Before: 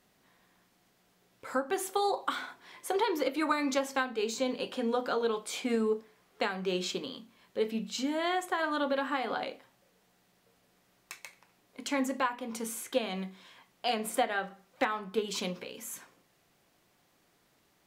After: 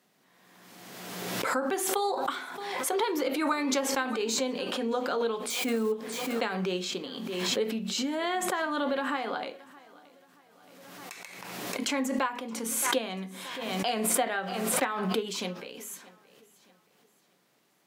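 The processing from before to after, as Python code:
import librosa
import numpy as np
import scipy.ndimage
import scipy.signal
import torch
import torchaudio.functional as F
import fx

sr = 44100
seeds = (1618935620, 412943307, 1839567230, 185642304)

y = fx.crossing_spikes(x, sr, level_db=-37.0, at=(5.5, 5.92))
y = scipy.signal.sosfilt(scipy.signal.butter(4, 140.0, 'highpass', fs=sr, output='sos'), y)
y = fx.echo_feedback(y, sr, ms=623, feedback_pct=39, wet_db=-22.0)
y = fx.pre_swell(y, sr, db_per_s=30.0)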